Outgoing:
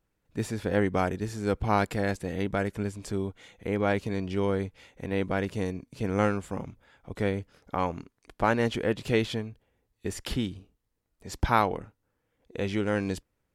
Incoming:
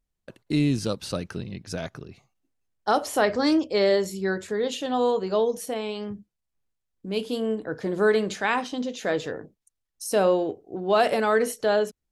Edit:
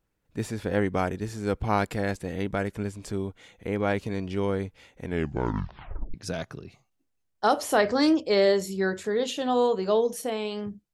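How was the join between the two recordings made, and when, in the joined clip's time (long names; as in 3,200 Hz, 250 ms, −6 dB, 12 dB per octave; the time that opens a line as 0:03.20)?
outgoing
0:05.02: tape stop 1.12 s
0:06.14: continue with incoming from 0:01.58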